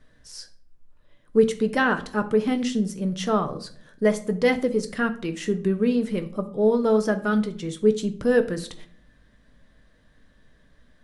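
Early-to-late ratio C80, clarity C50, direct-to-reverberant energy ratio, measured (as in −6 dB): 18.5 dB, 14.5 dB, 7.0 dB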